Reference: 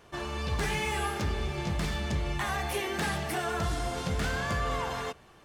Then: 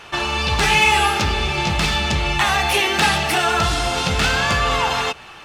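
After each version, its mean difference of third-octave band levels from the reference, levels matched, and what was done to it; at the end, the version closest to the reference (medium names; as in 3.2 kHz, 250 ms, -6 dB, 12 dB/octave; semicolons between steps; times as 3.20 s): 3.5 dB: peaking EQ 3 kHz +12.5 dB 2.7 oct; small resonant body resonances 860/1300/2600 Hz, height 8 dB, ringing for 25 ms; hard clipper -11 dBFS, distortion -39 dB; dynamic bell 1.7 kHz, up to -5 dB, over -33 dBFS, Q 0.7; trim +8.5 dB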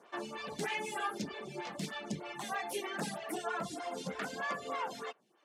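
7.0 dB: low-pass 11 kHz 12 dB/octave; reverb removal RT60 1.1 s; Chebyshev high-pass 190 Hz, order 3; lamp-driven phase shifter 3.2 Hz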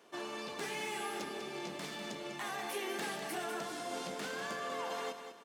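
4.5 dB: peak limiter -25.5 dBFS, peak gain reduction 3.5 dB; high-pass 230 Hz 24 dB/octave; peaking EQ 1.4 kHz -3 dB 1.9 oct; on a send: feedback delay 197 ms, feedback 37%, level -9 dB; on the sum: trim -3.5 dB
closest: first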